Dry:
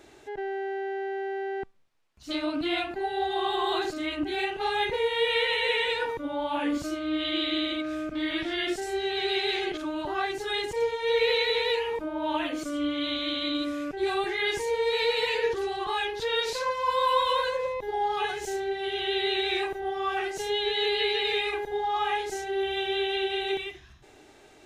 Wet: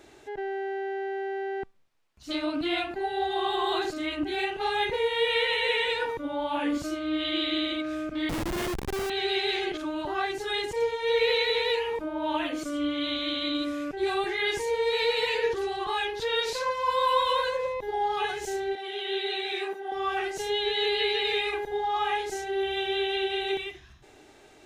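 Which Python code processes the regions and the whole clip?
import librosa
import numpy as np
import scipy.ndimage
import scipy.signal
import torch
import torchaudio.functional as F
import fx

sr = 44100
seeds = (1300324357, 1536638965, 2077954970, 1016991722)

y = fx.chain(x, sr, fx.highpass(hz=56.0, slope=12),
    fx.low_shelf(hz=83.0, db=9.5),
    fx.schmitt(flips_db=-28.0), at=(8.29, 9.1))
y = fx.chain(y, sr, fx.highpass(hz=200.0, slope=24),
    fx.ensemble(), at=(18.75, 19.92))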